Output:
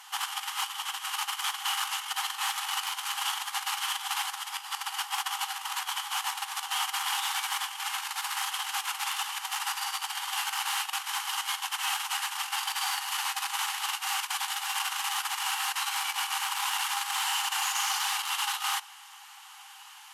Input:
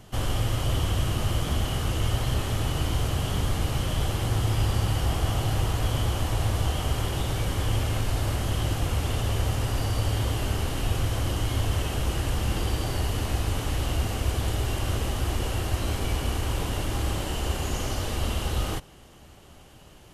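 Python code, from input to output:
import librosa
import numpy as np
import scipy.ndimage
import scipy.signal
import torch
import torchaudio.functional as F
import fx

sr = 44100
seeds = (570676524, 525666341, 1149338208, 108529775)

y = fx.over_compress(x, sr, threshold_db=-27.0, ratio=-0.5)
y = fx.clip_asym(y, sr, top_db=-21.0, bottom_db=-19.0)
y = fx.brickwall_highpass(y, sr, low_hz=760.0)
y = F.gain(torch.from_numpy(y), 5.5).numpy()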